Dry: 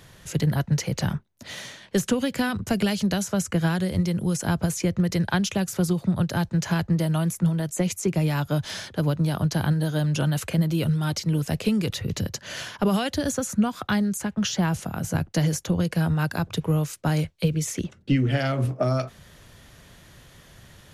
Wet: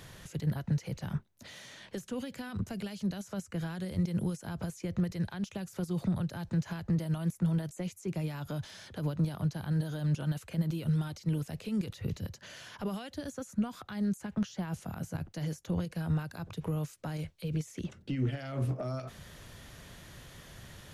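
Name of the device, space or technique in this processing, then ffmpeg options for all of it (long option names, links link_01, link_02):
de-esser from a sidechain: -filter_complex "[0:a]asplit=2[link_01][link_02];[link_02]highpass=frequency=5400:poles=1,apad=whole_len=923172[link_03];[link_01][link_03]sidechaincompress=threshold=-52dB:ratio=5:attack=1.2:release=61"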